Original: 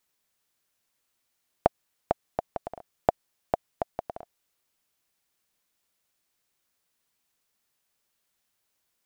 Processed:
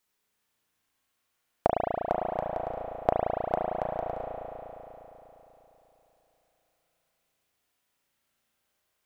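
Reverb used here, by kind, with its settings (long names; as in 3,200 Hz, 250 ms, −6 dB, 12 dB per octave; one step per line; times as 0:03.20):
spring reverb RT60 3.6 s, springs 35 ms, chirp 75 ms, DRR −3 dB
level −2 dB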